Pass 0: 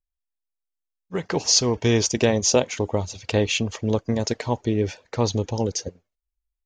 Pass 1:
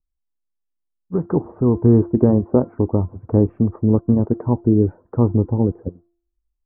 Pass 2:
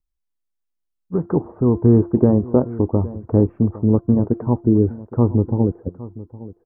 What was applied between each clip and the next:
Butterworth low-pass 1,300 Hz 48 dB per octave; low shelf with overshoot 420 Hz +7.5 dB, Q 1.5; hum removal 343.8 Hz, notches 5
single-tap delay 813 ms −17.5 dB

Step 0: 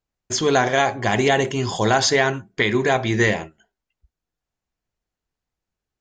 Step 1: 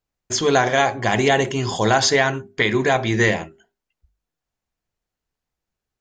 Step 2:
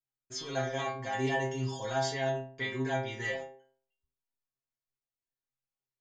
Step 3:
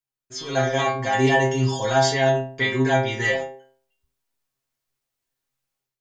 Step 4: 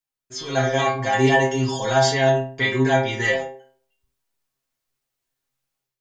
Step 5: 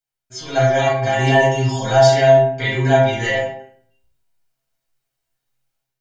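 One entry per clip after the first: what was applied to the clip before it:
mains-hum notches 50/100/150/200/250/300/350/400 Hz; level +1 dB
stiff-string resonator 130 Hz, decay 0.54 s, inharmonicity 0.002; level −3 dB
automatic gain control gain up to 11 dB; level +1.5 dB
flanger 0.63 Hz, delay 3.3 ms, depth 4.4 ms, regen −73%; level +5.5 dB
convolution reverb RT60 0.55 s, pre-delay 10 ms, DRR −0.5 dB; level −2 dB

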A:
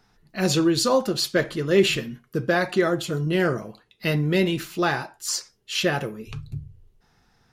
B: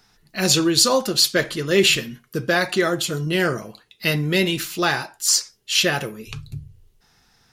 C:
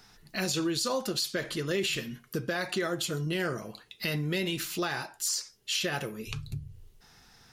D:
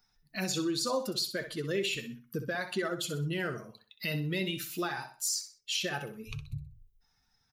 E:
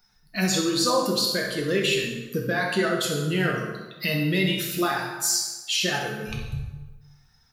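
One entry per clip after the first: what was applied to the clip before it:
high-shelf EQ 2,100 Hz +10.5 dB
brickwall limiter −11 dBFS, peak gain reduction 8.5 dB; downward compressor 2 to 1, threshold −38 dBFS, peak gain reduction 12 dB; level +1.5 dB
spectral dynamics exaggerated over time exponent 1.5; repeating echo 63 ms, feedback 32%, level −10.5 dB
dense smooth reverb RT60 1.2 s, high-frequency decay 0.7×, DRR −0.5 dB; level +6.5 dB

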